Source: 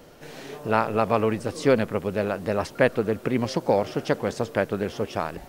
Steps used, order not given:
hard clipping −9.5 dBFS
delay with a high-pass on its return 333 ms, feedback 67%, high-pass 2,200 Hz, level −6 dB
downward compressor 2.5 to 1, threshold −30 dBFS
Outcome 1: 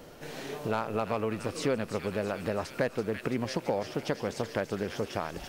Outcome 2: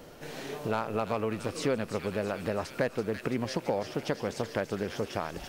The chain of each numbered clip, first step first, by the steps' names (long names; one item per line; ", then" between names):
delay with a high-pass on its return, then hard clipping, then downward compressor
hard clipping, then delay with a high-pass on its return, then downward compressor